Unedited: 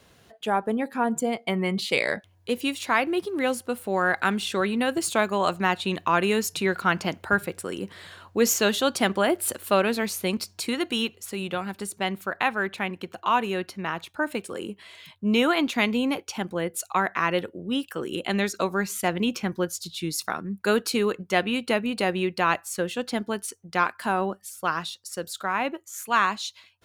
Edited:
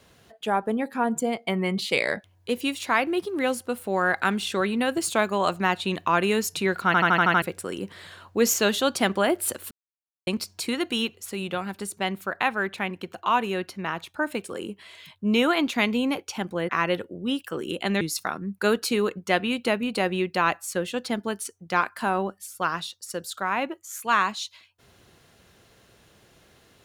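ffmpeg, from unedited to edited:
-filter_complex "[0:a]asplit=12[a][b][c][d][e][f][g][h][i][j][k][l];[a]atrim=end=6.942[m];[b]atrim=start=6.858:end=6.942[n];[c]atrim=start=6.858:end=6.942[o];[d]atrim=start=6.858:end=6.942[p];[e]atrim=start=6.858:end=6.942[q];[f]atrim=start=6.858:end=6.942[r];[g]atrim=start=6.858:end=6.942[s];[h]atrim=start=7.418:end=9.71,asetpts=PTS-STARTPTS,afade=t=out:st=2.288:d=0.004:c=hsin[t];[i]atrim=start=9.71:end=10.27,asetpts=PTS-STARTPTS,volume=0[u];[j]atrim=start=10.27:end=16.692,asetpts=PTS-STARTPTS,afade=t=in:d=0.004:c=hsin[v];[k]atrim=start=17.128:end=18.452[w];[l]atrim=start=20.038[x];[m][n]acrossfade=d=0.004:c1=hsin:c2=hsin[y];[y][o]acrossfade=d=0.004:c1=hsin:c2=hsin[z];[z][p]acrossfade=d=0.004:c1=hsin:c2=hsin[aa];[aa][q]acrossfade=d=0.004:c1=hsin:c2=hsin[ab];[ab][r]acrossfade=d=0.004:c1=hsin:c2=hsin[ac];[ac][s]acrossfade=d=0.004:c1=hsin:c2=hsin[ad];[t][u][v]concat=n=3:v=0:a=1[ae];[ad][ae]acrossfade=d=0.004:c1=hsin:c2=hsin[af];[af][w]acrossfade=d=0.004:c1=hsin:c2=hsin[ag];[ag][x]acrossfade=d=0.004:c1=hsin:c2=hsin"

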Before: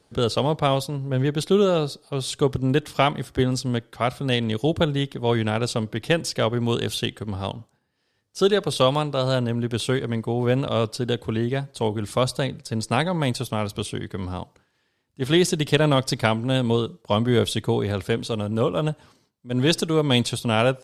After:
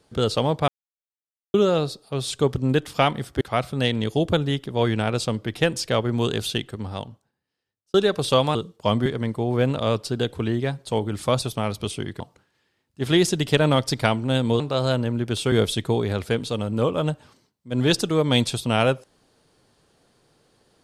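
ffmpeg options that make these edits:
-filter_complex "[0:a]asplit=11[a][b][c][d][e][f][g][h][i][j][k];[a]atrim=end=0.68,asetpts=PTS-STARTPTS,afade=t=out:st=0.676:d=0.004:c=hsin[l];[b]atrim=start=0.68:end=1.54,asetpts=PTS-STARTPTS,volume=0[m];[c]atrim=start=1.54:end=3.412,asetpts=PTS-STARTPTS,afade=t=in:d=0.004:c=hsin[n];[d]atrim=start=3.888:end=8.42,asetpts=PTS-STARTPTS,afade=t=out:st=3.132:d=1.4[o];[e]atrim=start=8.42:end=9.032,asetpts=PTS-STARTPTS,afade=t=in:d=0.004:c=hsin[p];[f]atrim=start=16.798:end=17.312[q];[g]atrim=start=9.948:end=12.312[r];[h]atrim=start=13.368:end=14.152[s];[i]atrim=start=14.398:end=16.802[t];[j]atrim=start=9.028:end=9.952[u];[k]atrim=start=17.308[v];[l][m][n]concat=n=3:v=0:a=1[w];[o][p]concat=n=2:v=0:a=1[x];[w][x]acrossfade=d=0.004:c1=hsin:c2=hsin[y];[y][q]acrossfade=d=0.004:c1=hsin:c2=hsin[z];[z][r]acrossfade=d=0.004:c1=hsin:c2=hsin[aa];[aa][s]acrossfade=d=0.004:c1=hsin:c2=hsin[ab];[ab][t]acrossfade=d=0.004:c1=hsin:c2=hsin[ac];[ac][u]acrossfade=d=0.004:c1=hsin:c2=hsin[ad];[ad][v]acrossfade=d=0.004:c1=hsin:c2=hsin"

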